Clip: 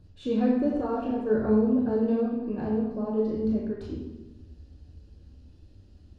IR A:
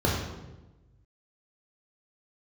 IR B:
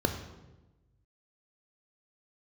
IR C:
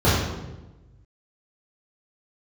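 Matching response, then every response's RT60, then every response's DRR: A; 1.1, 1.1, 1.1 s; -4.0, 6.0, -12.0 dB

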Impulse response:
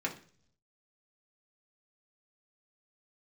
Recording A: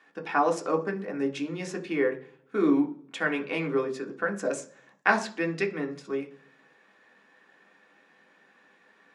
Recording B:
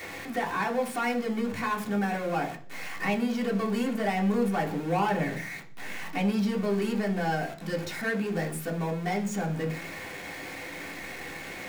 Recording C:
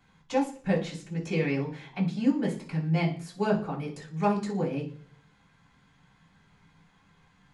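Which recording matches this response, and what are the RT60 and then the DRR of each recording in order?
B; 0.50, 0.50, 0.50 s; 2.0, -2.0, -11.5 dB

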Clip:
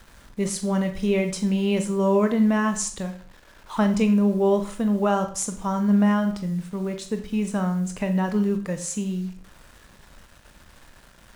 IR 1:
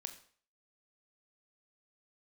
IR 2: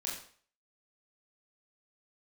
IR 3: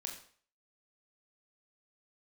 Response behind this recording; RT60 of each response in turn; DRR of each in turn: 1; 0.50, 0.50, 0.50 s; 7.0, -4.5, 1.0 dB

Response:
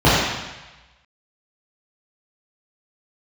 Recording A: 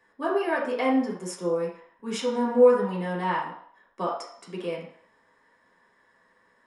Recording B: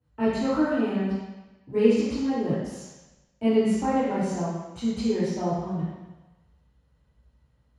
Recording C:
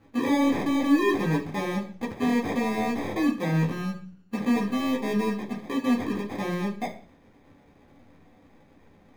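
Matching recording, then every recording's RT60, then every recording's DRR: B; 0.65, 1.1, 0.45 s; -5.0, -11.0, -4.0 dB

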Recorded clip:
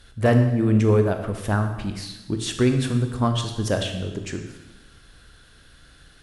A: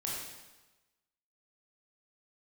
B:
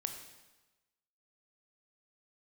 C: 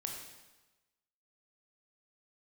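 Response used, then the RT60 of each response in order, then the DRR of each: B; 1.1, 1.1, 1.1 s; -4.5, 5.5, 1.0 dB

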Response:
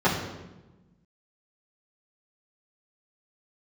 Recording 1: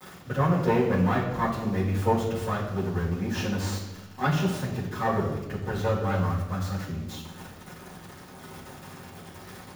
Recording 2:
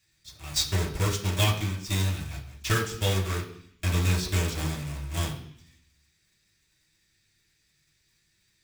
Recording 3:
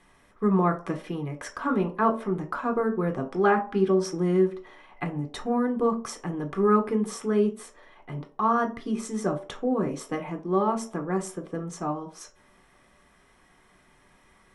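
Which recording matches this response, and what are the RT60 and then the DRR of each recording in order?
1; 1.1, 0.65, 0.50 s; -12.0, -2.5, 2.5 dB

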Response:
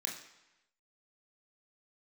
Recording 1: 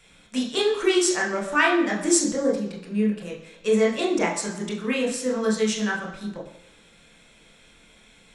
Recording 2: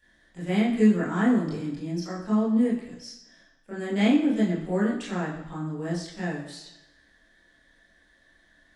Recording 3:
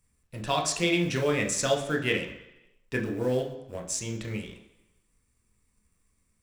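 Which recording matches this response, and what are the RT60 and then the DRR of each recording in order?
1; 0.95, 0.95, 0.95 s; -2.0, -9.0, 2.5 dB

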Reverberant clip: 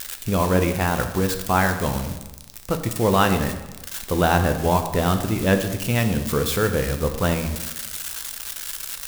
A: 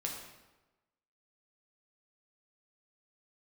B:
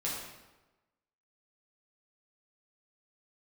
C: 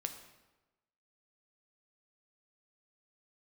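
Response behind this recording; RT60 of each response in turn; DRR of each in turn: C; 1.1, 1.1, 1.1 s; -1.0, -6.0, 6.0 dB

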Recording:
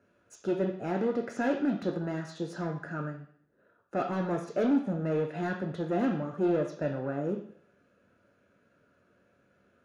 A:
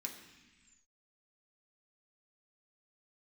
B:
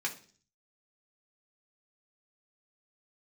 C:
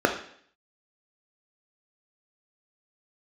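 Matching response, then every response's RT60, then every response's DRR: C; 1.2, 0.45, 0.60 s; 0.5, -1.5, 3.5 dB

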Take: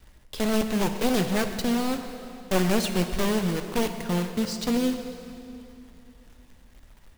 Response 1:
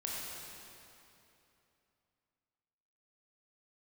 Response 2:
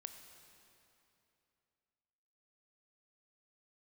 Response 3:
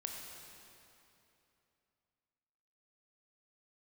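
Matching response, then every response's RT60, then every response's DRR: 2; 2.9, 2.9, 2.9 s; -4.5, 6.5, 0.5 dB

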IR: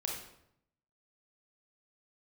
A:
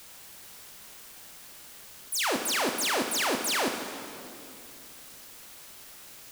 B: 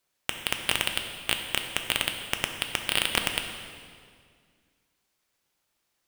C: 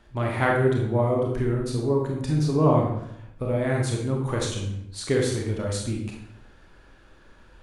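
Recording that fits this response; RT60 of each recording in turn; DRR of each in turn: C; 2.7, 2.0, 0.75 s; 4.0, 4.5, -1.0 dB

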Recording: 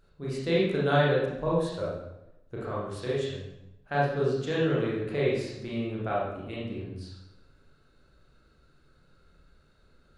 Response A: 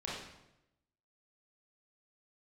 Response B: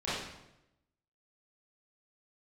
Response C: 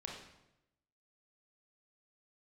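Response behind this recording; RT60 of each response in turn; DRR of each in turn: A; 0.90, 0.90, 0.90 s; -6.5, -12.5, -1.5 dB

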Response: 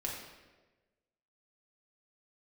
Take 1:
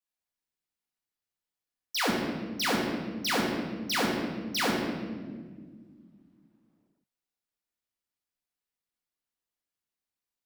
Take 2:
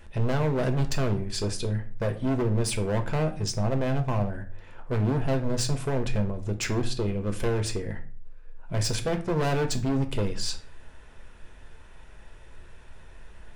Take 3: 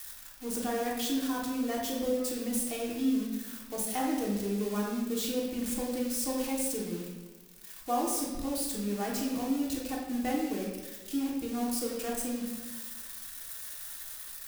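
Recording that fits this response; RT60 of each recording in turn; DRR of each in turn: 3; 1.7, 0.45, 1.2 s; -4.0, 5.5, -4.0 dB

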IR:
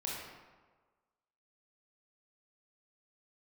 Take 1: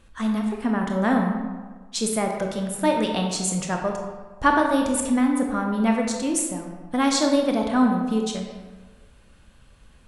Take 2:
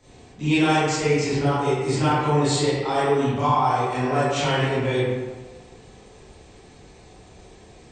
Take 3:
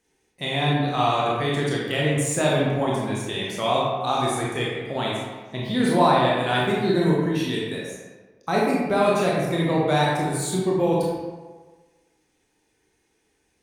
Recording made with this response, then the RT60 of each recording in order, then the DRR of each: 3; 1.4, 1.4, 1.4 s; 1.5, -12.5, -4.5 dB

